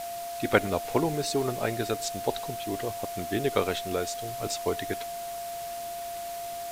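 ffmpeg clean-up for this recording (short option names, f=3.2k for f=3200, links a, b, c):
-af "bandreject=f=690:w=30,afwtdn=0.0071"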